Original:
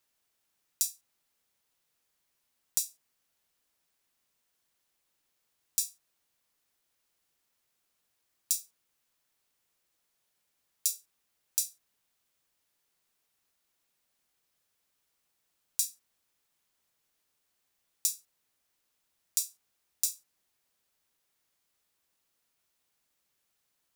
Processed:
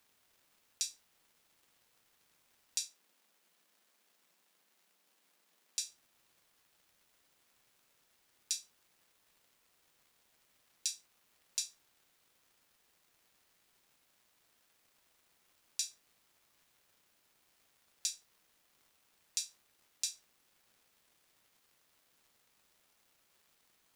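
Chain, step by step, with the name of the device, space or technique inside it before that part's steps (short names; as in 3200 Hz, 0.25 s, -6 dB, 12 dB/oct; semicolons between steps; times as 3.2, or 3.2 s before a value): 78 rpm shellac record (BPF 130–4200 Hz; crackle 320/s -64 dBFS; white noise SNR 25 dB); 2.88–5.86 Chebyshev high-pass 170 Hz, order 4; gain +4.5 dB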